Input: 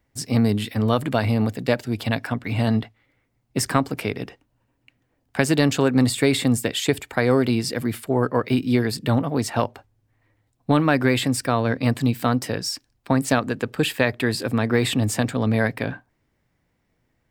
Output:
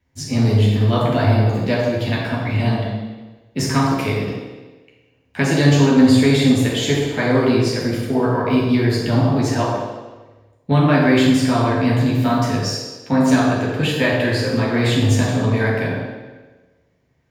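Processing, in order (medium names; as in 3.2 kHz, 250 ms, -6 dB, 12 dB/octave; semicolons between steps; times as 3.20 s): 3.75–4.15 s: treble shelf 4.5 kHz +5.5 dB; band-passed feedback delay 78 ms, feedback 69%, band-pass 460 Hz, level -4 dB; reverberation RT60 1.1 s, pre-delay 3 ms, DRR -5 dB; trim -8.5 dB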